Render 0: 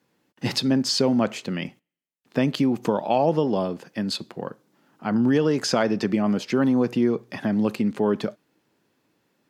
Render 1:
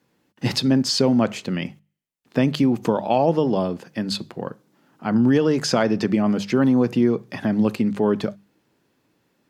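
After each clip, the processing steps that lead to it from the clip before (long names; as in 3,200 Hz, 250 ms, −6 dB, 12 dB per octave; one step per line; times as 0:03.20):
low-shelf EQ 110 Hz +9 dB
mains-hum notches 50/100/150/200 Hz
level +1.5 dB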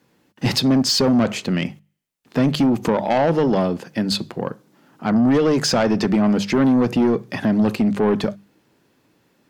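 soft clipping −17 dBFS, distortion −12 dB
level +5.5 dB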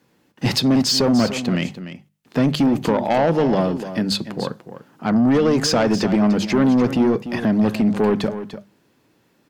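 single-tap delay 295 ms −12 dB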